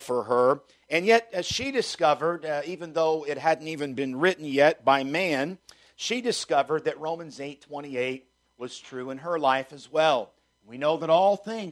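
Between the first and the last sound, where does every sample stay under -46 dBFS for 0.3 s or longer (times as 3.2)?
8.19–8.6
10.26–10.69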